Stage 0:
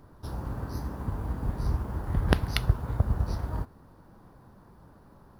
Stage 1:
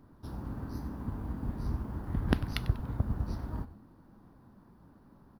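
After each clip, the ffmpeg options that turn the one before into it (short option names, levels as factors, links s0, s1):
-filter_complex "[0:a]equalizer=f=250:t=o:w=1:g=8,equalizer=f=500:t=o:w=1:g=-3,equalizer=f=8000:t=o:w=1:g=-4,asplit=4[s0][s1][s2][s3];[s1]adelay=96,afreqshift=-130,volume=0.168[s4];[s2]adelay=192,afreqshift=-260,volume=0.0624[s5];[s3]adelay=288,afreqshift=-390,volume=0.0229[s6];[s0][s4][s5][s6]amix=inputs=4:normalize=0,volume=0.473"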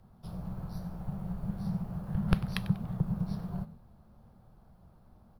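-af "afreqshift=-240"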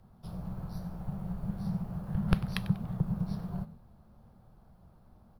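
-af anull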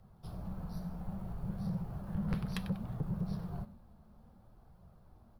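-af "flanger=delay=1.5:depth=3.3:regen=-55:speed=0.61:shape=triangular,asoftclip=type=tanh:threshold=0.0316,volume=1.33"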